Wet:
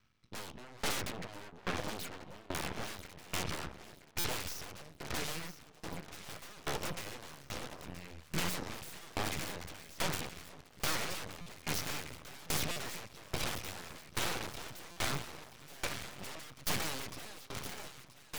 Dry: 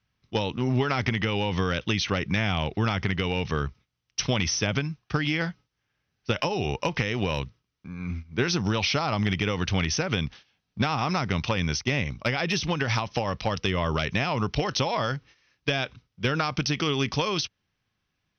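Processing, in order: 1.12–2.55 spectral contrast raised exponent 2.7; small resonant body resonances 1300/2300/4000 Hz, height 7 dB; on a send at -23 dB: reverb RT60 1.9 s, pre-delay 22 ms; on the sum: wavefolder -31 dBFS; echo with dull and thin repeats by turns 0.489 s, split 1000 Hz, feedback 80%, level -6 dB; half-wave rectifier; stuck buffer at 4.19/11.41/12.71/14.91, samples 256, times 8; dB-ramp tremolo decaying 1.2 Hz, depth 23 dB; gain +7.5 dB

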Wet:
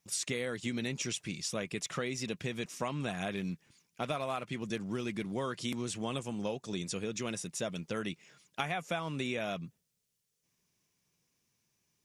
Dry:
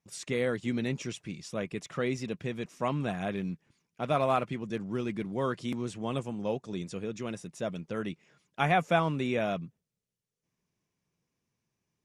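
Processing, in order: high shelf 2400 Hz +11.5 dB; compressor 12:1, threshold -31 dBFS, peak gain reduction 13.5 dB

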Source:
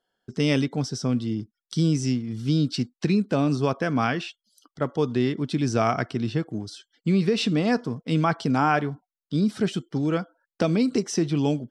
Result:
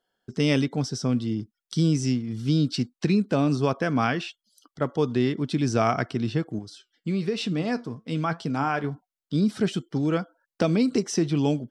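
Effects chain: 6.59–8.84 flange 1.1 Hz, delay 5.4 ms, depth 4.4 ms, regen +75%

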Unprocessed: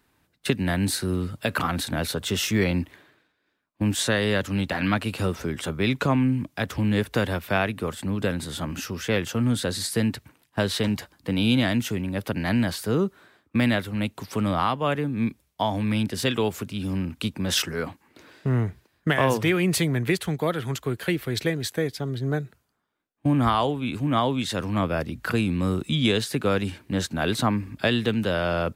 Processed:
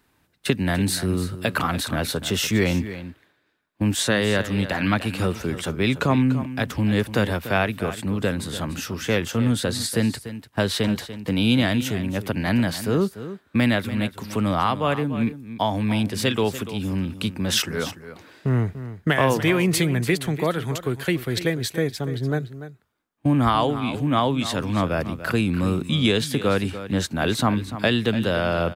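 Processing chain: echo 0.292 s -13 dB; gain +2 dB

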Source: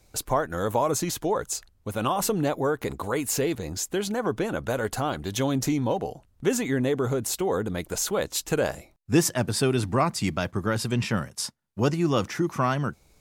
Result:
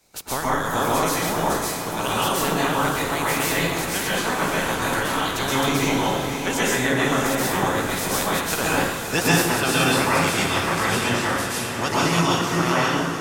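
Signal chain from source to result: spectral limiter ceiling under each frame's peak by 20 dB; on a send: diffused feedback echo 0.557 s, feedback 54%, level -6.5 dB; on the sum: plate-style reverb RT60 0.94 s, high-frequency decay 0.75×, pre-delay 0.11 s, DRR -6.5 dB; gain -3.5 dB

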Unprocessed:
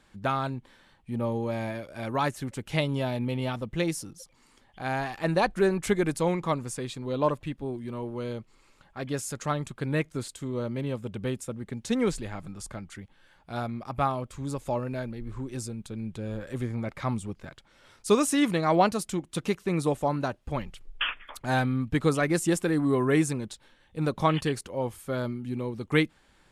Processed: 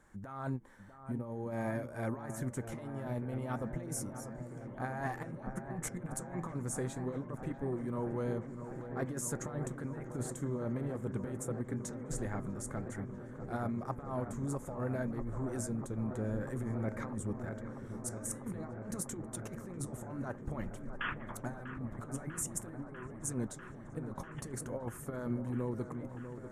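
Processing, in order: band shelf 3500 Hz -14 dB 1.3 oct; negative-ratio compressor -32 dBFS, ratio -0.5; flange 0.52 Hz, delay 1.8 ms, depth 8.8 ms, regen -82%; on a send: dark delay 0.645 s, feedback 85%, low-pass 1800 Hz, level -10 dB; on the sum: ending taper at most 430 dB/s; gain -2 dB

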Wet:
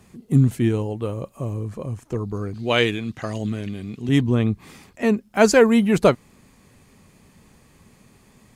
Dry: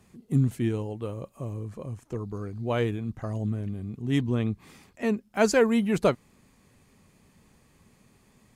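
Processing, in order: 2.54–4.09 weighting filter D; gain +7 dB

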